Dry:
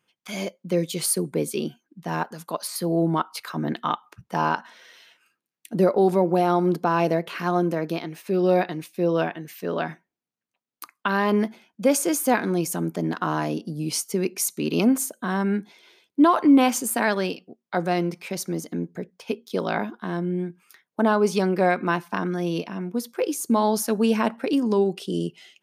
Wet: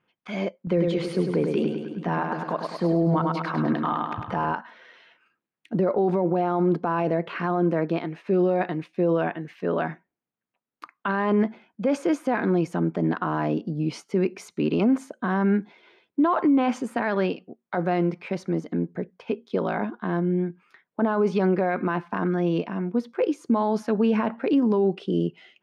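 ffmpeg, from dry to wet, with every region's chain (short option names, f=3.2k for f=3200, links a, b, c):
-filter_complex "[0:a]asettb=1/sr,asplit=3[a][b][c];[a]atrim=end=0.674[d];[b]atrim=start=0.67:end=4.53,asetpts=PTS-STARTPTS,afade=t=in:d=0.004:c=qsin,afade=t=out:st=3.856:d=0.004:c=qsin,acompressor=mode=upward:threshold=-25dB:ratio=2.5:attack=3.2:release=140:knee=2.83:detection=peak,highshelf=f=8.5k:g=-7,aecho=1:1:102|204|306|408|510|612|714|816:0.501|0.296|0.174|0.103|0.0607|0.0358|0.0211|0.0125,atrim=end_sample=170226[e];[c]atrim=start=4.526[f];[d][e]acrossfade=d=0.004:c1=hsin:c2=qsin[g];[g][f]acrossfade=d=0.004:c1=qsin:c2=hsin,lowpass=2.2k,alimiter=limit=-16.5dB:level=0:latency=1:release=17,volume=2.5dB"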